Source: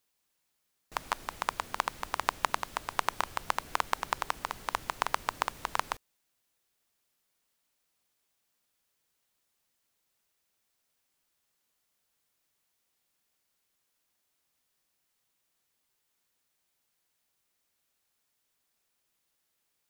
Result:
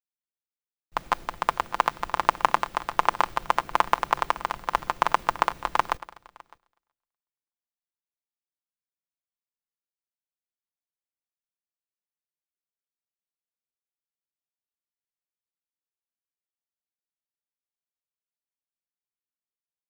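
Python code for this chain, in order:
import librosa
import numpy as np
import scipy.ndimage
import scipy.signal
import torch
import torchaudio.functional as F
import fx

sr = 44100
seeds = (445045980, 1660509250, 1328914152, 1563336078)

y = fx.echo_feedback(x, sr, ms=372, feedback_pct=38, wet_db=-21.0)
y = fx.leveller(y, sr, passes=1)
y = fx.peak_eq(y, sr, hz=12000.0, db=-12.0, octaves=2.8)
y = y + 0.35 * np.pad(y, (int(5.8 * sr / 1000.0), 0))[:len(y)]
y = y + 10.0 ** (-15.5 / 20.0) * np.pad(y, (int(607 * sr / 1000.0), 0))[:len(y)]
y = fx.band_widen(y, sr, depth_pct=70)
y = y * 10.0 ** (6.5 / 20.0)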